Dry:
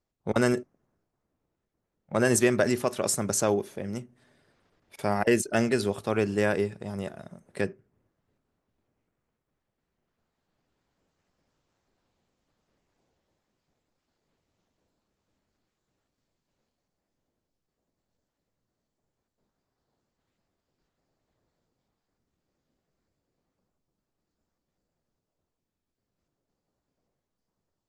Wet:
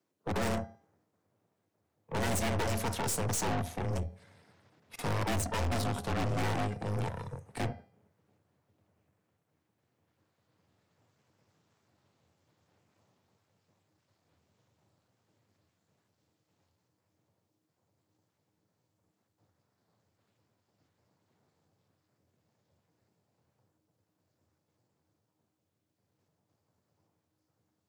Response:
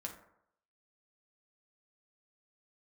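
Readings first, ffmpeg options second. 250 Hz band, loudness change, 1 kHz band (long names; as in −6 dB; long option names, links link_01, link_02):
−8.5 dB, −7.0 dB, −1.5 dB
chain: -filter_complex "[0:a]aeval=exprs='val(0)*sin(2*PI*230*n/s)':channel_layout=same,afreqshift=81,asplit=2[link_01][link_02];[1:a]atrim=start_sample=2205,afade=type=out:start_time=0.25:duration=0.01,atrim=end_sample=11466[link_03];[link_02][link_03]afir=irnorm=-1:irlink=0,volume=-17dB[link_04];[link_01][link_04]amix=inputs=2:normalize=0,asubboost=boost=3:cutoff=150,aeval=exprs='(tanh(70.8*val(0)+0.5)-tanh(0.5))/70.8':channel_layout=same,bandreject=frequency=401.1:width_type=h:width=4,bandreject=frequency=802.2:width_type=h:width=4,bandreject=frequency=1203.3:width_type=h:width=4,bandreject=frequency=1604.4:width_type=h:width=4,bandreject=frequency=2005.5:width_type=h:width=4,bandreject=frequency=2406.6:width_type=h:width=4,bandreject=frequency=2807.7:width_type=h:width=4,bandreject=frequency=3208.8:width_type=h:width=4,bandreject=frequency=3609.9:width_type=h:width=4,bandreject=frequency=4011:width_type=h:width=4,bandreject=frequency=4412.1:width_type=h:width=4,bandreject=frequency=4813.2:width_type=h:width=4,bandreject=frequency=5214.3:width_type=h:width=4,bandreject=frequency=5615.4:width_type=h:width=4,bandreject=frequency=6016.5:width_type=h:width=4,volume=7dB"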